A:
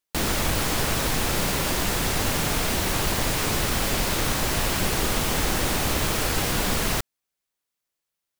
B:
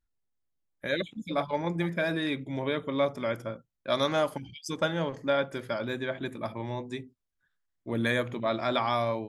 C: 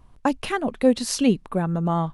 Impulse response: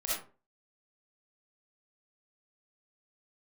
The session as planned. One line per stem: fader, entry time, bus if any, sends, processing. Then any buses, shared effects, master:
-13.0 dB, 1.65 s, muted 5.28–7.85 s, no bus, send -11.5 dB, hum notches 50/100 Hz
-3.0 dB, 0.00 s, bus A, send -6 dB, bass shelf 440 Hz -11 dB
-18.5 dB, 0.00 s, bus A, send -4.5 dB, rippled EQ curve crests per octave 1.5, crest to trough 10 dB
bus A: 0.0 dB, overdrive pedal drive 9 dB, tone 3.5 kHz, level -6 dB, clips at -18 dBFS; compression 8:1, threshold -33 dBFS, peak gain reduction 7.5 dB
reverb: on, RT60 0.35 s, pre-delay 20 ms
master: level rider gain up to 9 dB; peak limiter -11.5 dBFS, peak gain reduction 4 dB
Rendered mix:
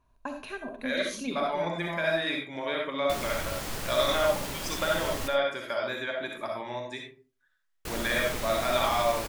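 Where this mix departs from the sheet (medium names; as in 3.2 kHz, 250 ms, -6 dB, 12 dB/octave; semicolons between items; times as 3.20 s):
stem A: entry 1.65 s -> 2.95 s; stem B: send -6 dB -> 0 dB; master: missing level rider gain up to 9 dB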